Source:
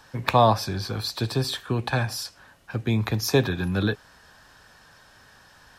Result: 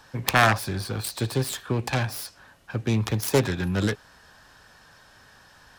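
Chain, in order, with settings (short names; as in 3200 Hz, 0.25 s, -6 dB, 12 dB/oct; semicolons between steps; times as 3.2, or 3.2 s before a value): self-modulated delay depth 0.6 ms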